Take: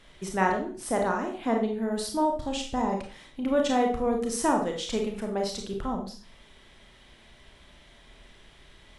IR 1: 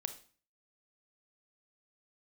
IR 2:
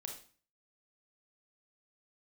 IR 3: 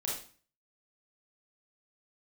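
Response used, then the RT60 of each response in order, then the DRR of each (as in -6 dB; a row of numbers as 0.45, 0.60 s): 2; 0.40, 0.40, 0.40 s; 8.5, 1.5, -4.5 dB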